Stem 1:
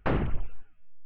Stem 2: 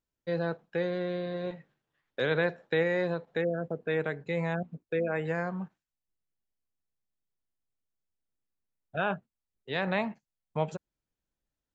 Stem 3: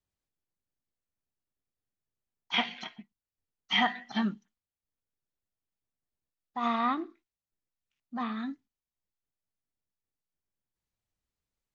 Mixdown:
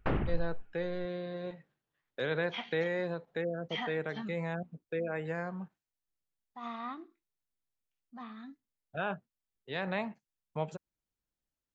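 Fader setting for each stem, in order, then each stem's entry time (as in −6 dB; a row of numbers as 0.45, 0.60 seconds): −4.5, −5.0, −12.0 decibels; 0.00, 0.00, 0.00 seconds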